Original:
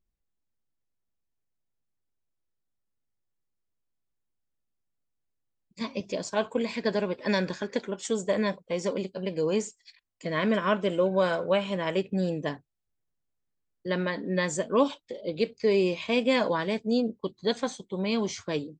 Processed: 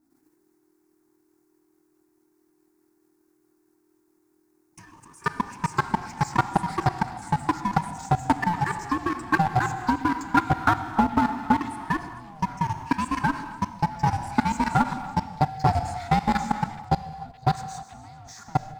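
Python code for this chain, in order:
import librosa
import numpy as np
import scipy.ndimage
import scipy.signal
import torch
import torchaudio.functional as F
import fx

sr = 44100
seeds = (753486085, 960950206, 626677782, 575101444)

y = fx.peak_eq(x, sr, hz=450.0, db=9.5, octaves=0.36)
y = y * np.sin(2.0 * np.pi * 310.0 * np.arange(len(y)) / sr)
y = fx.low_shelf(y, sr, hz=210.0, db=-7.5)
y = fx.fixed_phaser(y, sr, hz=1200.0, stages=4)
y = fx.small_body(y, sr, hz=(250.0, 1400.0), ring_ms=70, db=8)
y = fx.power_curve(y, sr, exponent=0.7)
y = fx.level_steps(y, sr, step_db=24)
y = fx.echo_stepped(y, sr, ms=141, hz=370.0, octaves=1.4, feedback_pct=70, wet_db=-10)
y = fx.rev_gated(y, sr, seeds[0], gate_ms=330, shape='flat', drr_db=9.5)
y = fx.echo_pitch(y, sr, ms=97, semitones=2, count=2, db_per_echo=-3.0)
y = fx.transient(y, sr, attack_db=8, sustain_db=4)
y = fx.transformer_sat(y, sr, knee_hz=430.0)
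y = F.gain(torch.from_numpy(y), 2.5).numpy()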